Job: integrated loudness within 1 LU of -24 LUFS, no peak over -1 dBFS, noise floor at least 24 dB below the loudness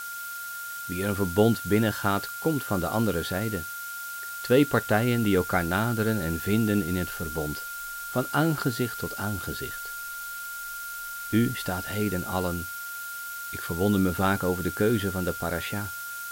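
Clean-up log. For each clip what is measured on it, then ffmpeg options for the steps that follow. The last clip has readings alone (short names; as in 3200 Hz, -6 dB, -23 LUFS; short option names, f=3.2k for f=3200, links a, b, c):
steady tone 1400 Hz; tone level -35 dBFS; noise floor -37 dBFS; noise floor target -52 dBFS; loudness -27.5 LUFS; peak -8.0 dBFS; loudness target -24.0 LUFS
-> -af "bandreject=f=1.4k:w=30"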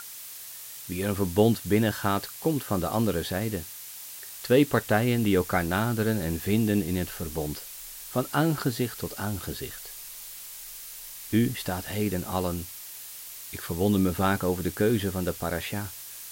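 steady tone none; noise floor -42 dBFS; noise floor target -52 dBFS
-> -af "afftdn=nr=10:nf=-42"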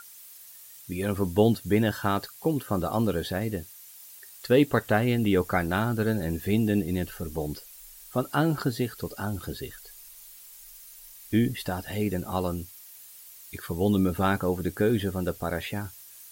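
noise floor -48 dBFS; noise floor target -52 dBFS
-> -af "afftdn=nr=6:nf=-48"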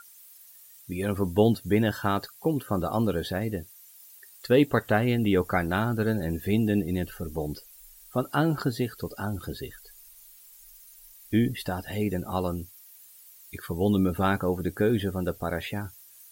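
noise floor -52 dBFS; loudness -27.5 LUFS; peak -8.0 dBFS; loudness target -24.0 LUFS
-> -af "volume=3.5dB"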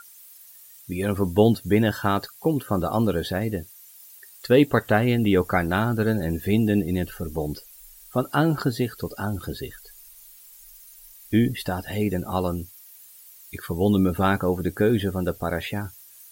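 loudness -24.0 LUFS; peak -4.5 dBFS; noise floor -49 dBFS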